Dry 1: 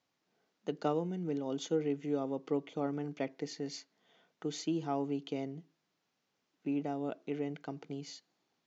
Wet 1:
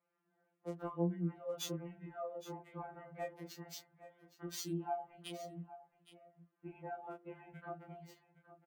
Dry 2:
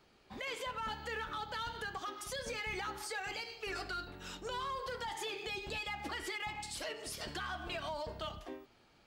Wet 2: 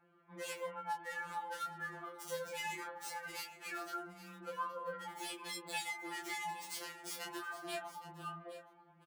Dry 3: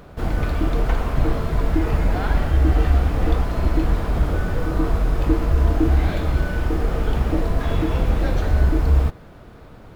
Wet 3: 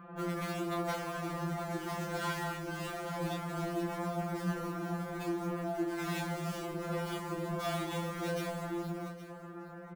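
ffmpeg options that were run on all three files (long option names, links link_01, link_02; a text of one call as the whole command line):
ffmpeg -i in.wav -filter_complex "[0:a]highpass=40,acrossover=split=350|1800[link_01][link_02][link_03];[link_03]acrusher=bits=5:mix=0:aa=0.5[link_04];[link_01][link_02][link_04]amix=inputs=3:normalize=0,lowshelf=frequency=70:gain=-10,acompressor=threshold=-35dB:ratio=2,flanger=delay=22.5:depth=2.8:speed=0.21,tiltshelf=frequency=1400:gain=-4,asplit=2[link_05][link_06];[link_06]aecho=0:1:816:0.178[link_07];[link_05][link_07]amix=inputs=2:normalize=0,afftfilt=real='re*2.83*eq(mod(b,8),0)':imag='im*2.83*eq(mod(b,8),0)':win_size=2048:overlap=0.75,volume=7dB" out.wav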